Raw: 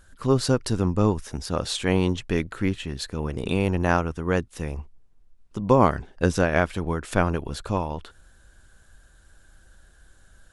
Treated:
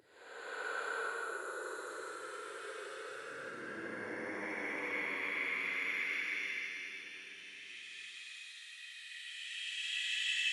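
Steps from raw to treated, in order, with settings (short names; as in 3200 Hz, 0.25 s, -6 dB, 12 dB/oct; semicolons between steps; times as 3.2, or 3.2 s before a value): phaser 0.28 Hz, delay 3.5 ms, feedback 27%; Paulstretch 34×, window 0.05 s, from 2.5; high-pass sweep 410 Hz -> 2000 Hz, 3.03–6.88; gain -6.5 dB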